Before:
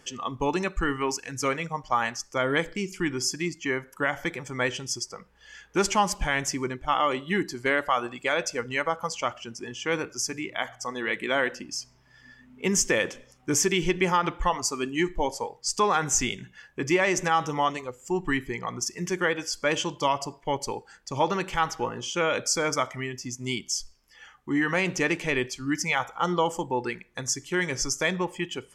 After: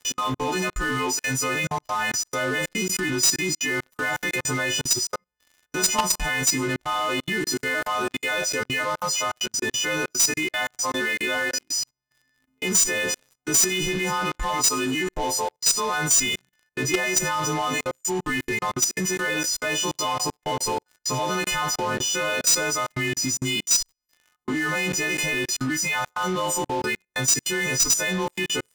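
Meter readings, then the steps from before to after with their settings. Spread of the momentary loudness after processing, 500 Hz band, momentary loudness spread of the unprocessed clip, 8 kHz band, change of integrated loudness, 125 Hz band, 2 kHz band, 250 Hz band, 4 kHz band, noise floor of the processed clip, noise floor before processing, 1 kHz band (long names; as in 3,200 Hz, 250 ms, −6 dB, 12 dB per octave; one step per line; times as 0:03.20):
7 LU, −0.5 dB, 9 LU, +9.0 dB, +4.0 dB, +2.0 dB, +4.0 dB, +0.5 dB, +6.5 dB, −72 dBFS, −58 dBFS, 0.0 dB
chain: every partial snapped to a pitch grid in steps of 3 semitones
output level in coarse steps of 18 dB
leveller curve on the samples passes 5
level −6.5 dB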